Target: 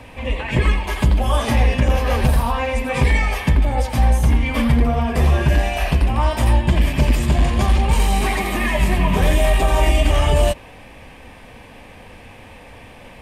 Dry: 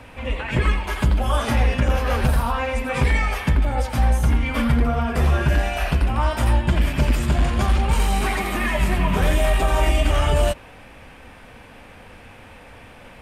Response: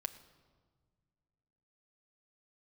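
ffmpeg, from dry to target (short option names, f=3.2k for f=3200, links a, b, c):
-af "equalizer=f=1.4k:w=6.7:g=-12,volume=3dB"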